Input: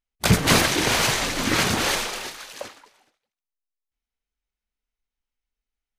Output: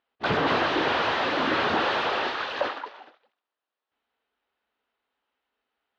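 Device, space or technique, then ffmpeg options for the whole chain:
overdrive pedal into a guitar cabinet: -filter_complex "[0:a]asplit=2[s0][s1];[s1]highpass=f=720:p=1,volume=44.7,asoftclip=type=tanh:threshold=0.501[s2];[s0][s2]amix=inputs=2:normalize=0,lowpass=f=1200:p=1,volume=0.501,highpass=99,equalizer=f=120:t=q:w=4:g=-7,equalizer=f=190:t=q:w=4:g=-8,equalizer=f=2200:t=q:w=4:g=-7,lowpass=f=3900:w=0.5412,lowpass=f=3900:w=1.3066,volume=0.531"

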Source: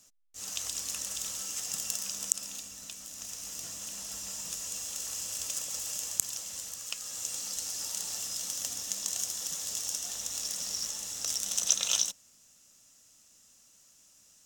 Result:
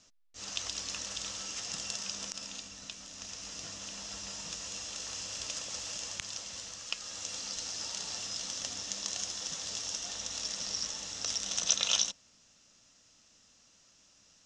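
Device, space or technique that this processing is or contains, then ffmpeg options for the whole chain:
synthesiser wavefolder: -af "aeval=exprs='0.266*(abs(mod(val(0)/0.266+3,4)-2)-1)':c=same,lowpass=f=5600:w=0.5412,lowpass=f=5600:w=1.3066,volume=1.41"

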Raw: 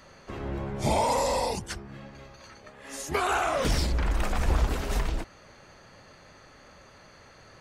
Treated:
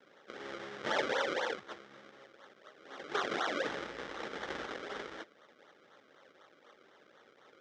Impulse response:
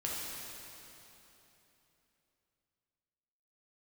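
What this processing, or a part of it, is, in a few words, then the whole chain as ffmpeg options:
circuit-bent sampling toy: -af "acrusher=samples=34:mix=1:aa=0.000001:lfo=1:lforange=34:lforate=4,highpass=590,equalizer=f=690:t=q:w=4:g=-9,equalizer=f=970:t=q:w=4:g=-9,equalizer=f=2600:t=q:w=4:g=-9,equalizer=f=4400:t=q:w=4:g=-9,lowpass=f=4700:w=0.5412,lowpass=f=4700:w=1.3066"

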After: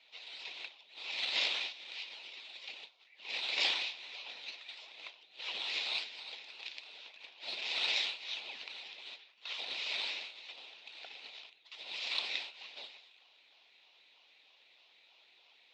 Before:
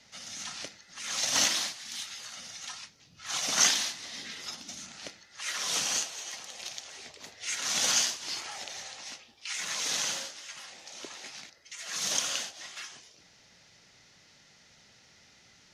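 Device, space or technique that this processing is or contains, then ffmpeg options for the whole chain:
voice changer toy: -af "aeval=exprs='val(0)*sin(2*PI*1500*n/s+1500*0.45/3.2*sin(2*PI*3.2*n/s))':c=same,highpass=540,equalizer=f=1200:t=q:w=4:g=-9,equalizer=f=1600:t=q:w=4:g=-9,equalizer=f=2500:t=q:w=4:g=8,equalizer=f=3800:t=q:w=4:g=8,lowpass=f=3900:w=0.5412,lowpass=f=3900:w=1.3066,volume=0.75"

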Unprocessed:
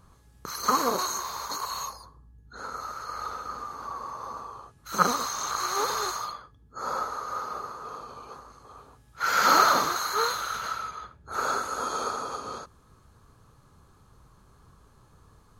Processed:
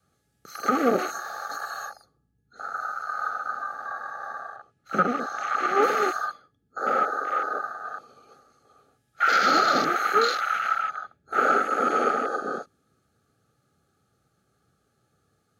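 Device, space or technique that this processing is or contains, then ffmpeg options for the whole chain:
PA system with an anti-feedback notch: -filter_complex "[0:a]asettb=1/sr,asplit=3[s0][s1][s2];[s0]atrim=end=4.564[s3];[s1]atrim=start=4.56:end=5.83,asetpts=PTS-STARTPTS,afade=t=in:d=0.004:c=qsin,afade=t=out:st=1.266:d=0.004:c=qsin,aemphasis=mode=reproduction:type=50kf[s4];[s2]atrim=start=5.826[s5];[s3][s4]acrossfade=d=0.004:c1=hsin:c2=qsin[s6];[s6][s5]acrossfade=d=0.004:c1=qsin:c2=hsin,highpass=83,afwtdn=0.0224,highpass=f=140:p=1,asuperstop=centerf=1000:order=8:qfactor=3.1,alimiter=limit=0.106:level=0:latency=1:release=369,adynamicequalizer=threshold=0.00224:dfrequency=270:dqfactor=1.4:tfrequency=270:tqfactor=1.4:attack=5:release=100:ratio=0.375:range=3:mode=boostabove:tftype=bell,volume=2.66"

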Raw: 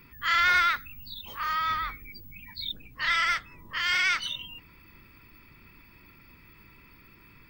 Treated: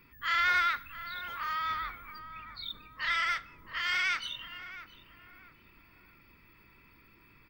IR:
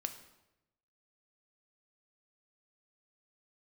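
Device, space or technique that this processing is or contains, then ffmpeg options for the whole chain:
filtered reverb send: -filter_complex "[0:a]asettb=1/sr,asplit=3[s0][s1][s2];[s0]atrim=end=2.194[s3];[s1]atrim=start=2.19:end=2.64,asetpts=PTS-STARTPTS,afade=t=in:d=0.004:c=qsin,afade=t=out:st=0.446:d=0.004:c=qsin,lowpass=11000[s4];[s2]atrim=start=2.636[s5];[s3][s4]acrossfade=d=0.004:c1=hsin:c2=qsin[s6];[s6][s5]acrossfade=d=0.004:c1=qsin:c2=hsin,asplit=2[s7][s8];[s8]highpass=230,lowpass=5000[s9];[1:a]atrim=start_sample=2205[s10];[s9][s10]afir=irnorm=-1:irlink=0,volume=0.473[s11];[s7][s11]amix=inputs=2:normalize=0,asplit=2[s12][s13];[s13]adelay=671,lowpass=f=1100:p=1,volume=0.335,asplit=2[s14][s15];[s15]adelay=671,lowpass=f=1100:p=1,volume=0.5,asplit=2[s16][s17];[s17]adelay=671,lowpass=f=1100:p=1,volume=0.5,asplit=2[s18][s19];[s19]adelay=671,lowpass=f=1100:p=1,volume=0.5,asplit=2[s20][s21];[s21]adelay=671,lowpass=f=1100:p=1,volume=0.5,asplit=2[s22][s23];[s23]adelay=671,lowpass=f=1100:p=1,volume=0.5[s24];[s12][s14][s16][s18][s20][s22][s24]amix=inputs=7:normalize=0,volume=0.422"

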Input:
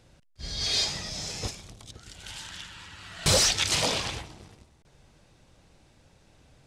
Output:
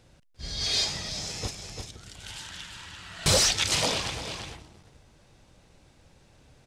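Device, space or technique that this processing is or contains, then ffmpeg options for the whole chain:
ducked delay: -filter_complex "[0:a]asplit=3[s0][s1][s2];[s1]adelay=345,volume=0.531[s3];[s2]apad=whole_len=309296[s4];[s3][s4]sidechaincompress=threshold=0.00891:ratio=8:attack=6.7:release=131[s5];[s0][s5]amix=inputs=2:normalize=0"

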